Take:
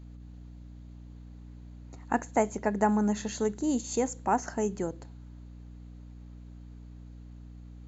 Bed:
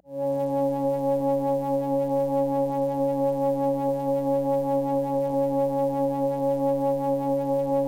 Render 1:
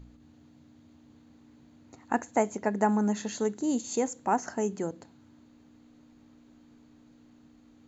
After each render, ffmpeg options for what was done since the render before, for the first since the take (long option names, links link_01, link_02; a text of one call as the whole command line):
ffmpeg -i in.wav -af "bandreject=frequency=60:width_type=h:width=4,bandreject=frequency=120:width_type=h:width=4,bandreject=frequency=180:width_type=h:width=4" out.wav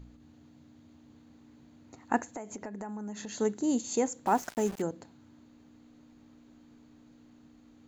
ffmpeg -i in.wav -filter_complex "[0:a]asettb=1/sr,asplit=3[link_01][link_02][link_03];[link_01]atrim=end=2.324[link_04];[link_02]atrim=start=2.32:end=3.38,asetpts=PTS-STARTPTS,afade=type=in:duration=0.004:curve=qsin,afade=type=out:start_time=1.056:duration=0.004:curve=qsin,acompressor=threshold=-36dB:ratio=10:attack=3.2:release=140:knee=1:detection=peak[link_05];[link_03]atrim=start=3.376[link_06];[link_04][link_05]acrossfade=duration=0.004:curve1=hsin:curve2=qsin[link_07];[link_07][link_06]acrossfade=duration=0.004:curve1=qsin:curve2=hsin,asettb=1/sr,asplit=3[link_08][link_09][link_10];[link_08]atrim=end=4.264[link_11];[link_09]atrim=start=4.26:end=4.82,asetpts=PTS-STARTPTS,afade=type=in:duration=0.004:curve=qsin,afade=type=out:start_time=0.556:duration=0.004:curve=qsin,aeval=exprs='val(0)*gte(abs(val(0)),0.0112)':channel_layout=same[link_12];[link_10]atrim=start=4.816[link_13];[link_11][link_12]acrossfade=duration=0.004:curve1=hsin:curve2=qsin[link_14];[link_14][link_13]acrossfade=duration=0.004:curve1=qsin:curve2=hsin" out.wav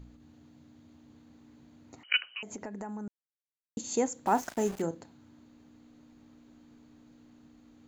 ffmpeg -i in.wav -filter_complex "[0:a]asettb=1/sr,asplit=3[link_01][link_02][link_03];[link_01]atrim=end=2.034[link_04];[link_02]atrim=start=2.03:end=2.43,asetpts=PTS-STARTPTS,afade=type=in:duration=0.004:curve=qsin,afade=type=out:start_time=0.396:duration=0.004:curve=qsin,lowpass=frequency=2700:width_type=q:width=0.5098,lowpass=frequency=2700:width_type=q:width=0.6013,lowpass=frequency=2700:width_type=q:width=0.9,lowpass=frequency=2700:width_type=q:width=2.563,afreqshift=-3200[link_05];[link_03]atrim=start=2.426[link_06];[link_04][link_05]acrossfade=duration=0.004:curve1=hsin:curve2=qsin[link_07];[link_07][link_06]acrossfade=duration=0.004:curve1=qsin:curve2=hsin,asettb=1/sr,asplit=3[link_08][link_09][link_10];[link_08]atrim=end=4.324[link_11];[link_09]atrim=start=4.32:end=4.98,asetpts=PTS-STARTPTS,afade=type=in:duration=0.004:curve=qsin,afade=type=out:start_time=0.656:duration=0.004:curve=qsin,asplit=2[link_12][link_13];[link_13]adelay=36,volume=-13dB[link_14];[link_12][link_14]amix=inputs=2:normalize=0,atrim=end_sample=29106[link_15];[link_10]atrim=start=4.976[link_16];[link_11][link_15]acrossfade=duration=0.004:curve1=hsin:curve2=qsin[link_17];[link_17][link_16]acrossfade=duration=0.004:curve1=qsin:curve2=hsin,asplit=3[link_18][link_19][link_20];[link_18]atrim=end=3.08,asetpts=PTS-STARTPTS,afade=type=out:start_time=3.076:duration=0.004:curve=hsin[link_21];[link_19]atrim=start=3.08:end=3.77,asetpts=PTS-STARTPTS,volume=0[link_22];[link_20]atrim=start=3.77,asetpts=PTS-STARTPTS,afade=type=in:duration=0.004:curve=hsin[link_23];[link_21][link_22][link_23]concat=n=3:v=0:a=1" out.wav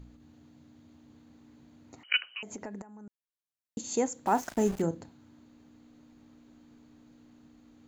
ffmpeg -i in.wav -filter_complex "[0:a]asettb=1/sr,asplit=3[link_01][link_02][link_03];[link_01]atrim=end=4.514[link_04];[link_02]atrim=start=4.51:end=5.09,asetpts=PTS-STARTPTS,afade=type=in:duration=0.004:curve=qsin,afade=type=out:start_time=0.576:duration=0.004:curve=qsin,lowshelf=frequency=200:gain=10[link_05];[link_03]atrim=start=5.086[link_06];[link_04][link_05]acrossfade=duration=0.004:curve1=hsin:curve2=qsin[link_07];[link_07][link_06]acrossfade=duration=0.004:curve1=qsin:curve2=hsin,asplit=2[link_08][link_09];[link_08]atrim=end=2.82,asetpts=PTS-STARTPTS,afade=type=out:start_time=2.816:duration=0.004:curve=hsin:silence=0.199526[link_10];[link_09]atrim=start=2.82,asetpts=PTS-STARTPTS,afade=type=in:duration=1:silence=0.199526[link_11];[link_10][link_11]concat=n=2:v=0:a=1" out.wav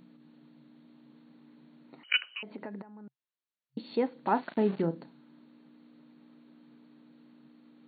ffmpeg -i in.wav -af "bandreject=frequency=740:width=12,afftfilt=real='re*between(b*sr/4096,130,4500)':imag='im*between(b*sr/4096,130,4500)':win_size=4096:overlap=0.75" out.wav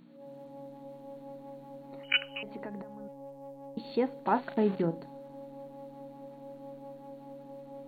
ffmpeg -i in.wav -i bed.wav -filter_complex "[1:a]volume=-22.5dB[link_01];[0:a][link_01]amix=inputs=2:normalize=0" out.wav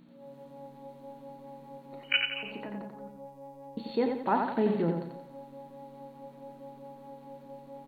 ffmpeg -i in.wav -filter_complex "[0:a]asplit=2[link_01][link_02];[link_02]adelay=35,volume=-12dB[link_03];[link_01][link_03]amix=inputs=2:normalize=0,asplit=2[link_04][link_05];[link_05]aecho=0:1:88|176|264|352|440:0.562|0.236|0.0992|0.0417|0.0175[link_06];[link_04][link_06]amix=inputs=2:normalize=0" out.wav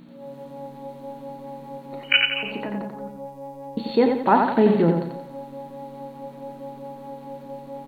ffmpeg -i in.wav -af "volume=10dB,alimiter=limit=-3dB:level=0:latency=1" out.wav